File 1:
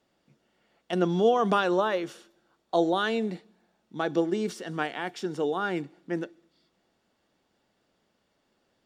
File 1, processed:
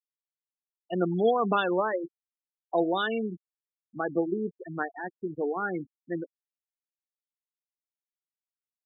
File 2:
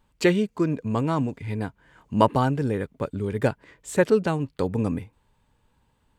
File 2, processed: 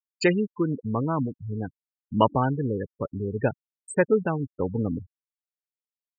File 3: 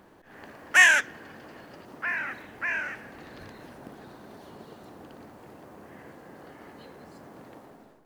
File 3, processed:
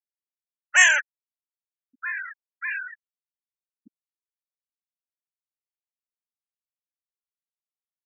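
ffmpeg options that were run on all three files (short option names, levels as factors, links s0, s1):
-af "afftfilt=real='re*gte(hypot(re,im),0.0708)':imag='im*gte(hypot(re,im),0.0708)':win_size=1024:overlap=0.75,aemphasis=mode=production:type=75fm,volume=0.891"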